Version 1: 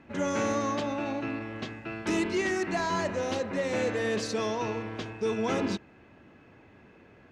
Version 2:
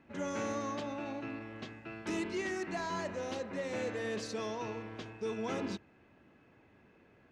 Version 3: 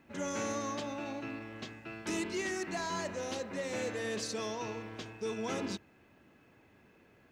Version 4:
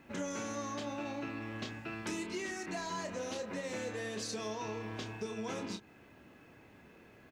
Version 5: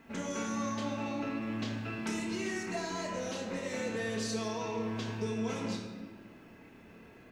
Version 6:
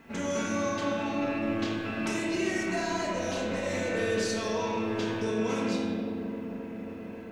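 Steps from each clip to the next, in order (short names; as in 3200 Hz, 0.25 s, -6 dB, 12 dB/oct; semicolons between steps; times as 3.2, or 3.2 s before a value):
notches 50/100 Hz; gain -8 dB
high shelf 5200 Hz +11.5 dB
compressor, threshold -41 dBFS, peak gain reduction 9.5 dB; doubler 28 ms -7 dB; gain +4 dB
shoebox room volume 1200 m³, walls mixed, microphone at 1.6 m
dark delay 0.268 s, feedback 81%, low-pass 640 Hz, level -7.5 dB; spring tank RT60 1.3 s, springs 42 ms, chirp 60 ms, DRR 0 dB; gain +3.5 dB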